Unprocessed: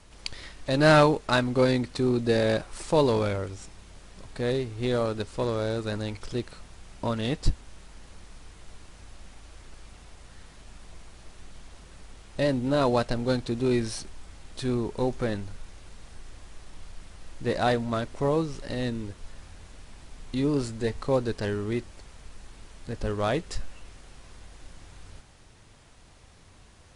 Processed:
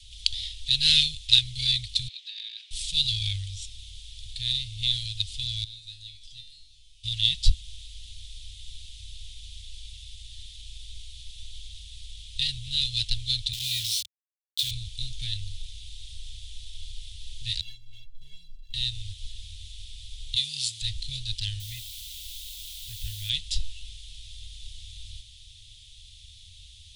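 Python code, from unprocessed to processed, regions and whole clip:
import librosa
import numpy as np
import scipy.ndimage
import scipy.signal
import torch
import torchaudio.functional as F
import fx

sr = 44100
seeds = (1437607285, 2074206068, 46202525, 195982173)

y = fx.chain(x, sr, fx.highpass(hz=1300.0, slope=24),
    fx.spacing_loss(db_at_10k=25),
    fx.over_compress(threshold_db=-44.0, ratio=-0.5), at=(2.08, 2.71))
y = fx.chain(y, sr, fx.peak_eq(hz=500.0, db=-12.0, octaves=0.77),
    fx.comb_fb(f0_hz=150.0, decay_s=0.56, harmonics='all', damping=0.0, mix_pct=90), at=(5.64, 7.04))
y = fx.chain(y, sr, fx.highpass(hz=130.0, slope=12),
    fx.quant_dither(seeds[0], bits=6, dither='none'), at=(13.53, 14.71))
y = fx.chain(y, sr, fx.median_filter(points=25),
    fx.tilt_eq(slope=-1.5),
    fx.stiff_resonator(f0_hz=200.0, decay_s=0.31, stiffness=0.03), at=(17.61, 18.74))
y = fx.chain(y, sr, fx.highpass(hz=110.0, slope=24),
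    fx.tilt_eq(slope=2.0), at=(20.36, 20.82))
y = fx.chain(y, sr, fx.lowpass(hz=2400.0, slope=24),
    fx.low_shelf(hz=120.0, db=-7.0),
    fx.quant_dither(seeds[1], bits=8, dither='triangular'), at=(21.6, 23.3))
y = scipy.signal.sosfilt(scipy.signal.cheby2(4, 50, [220.0, 1300.0], 'bandstop', fs=sr, output='sos'), y)
y = fx.peak_eq(y, sr, hz=3500.0, db=14.0, octaves=0.56)
y = y * 10.0 ** (4.5 / 20.0)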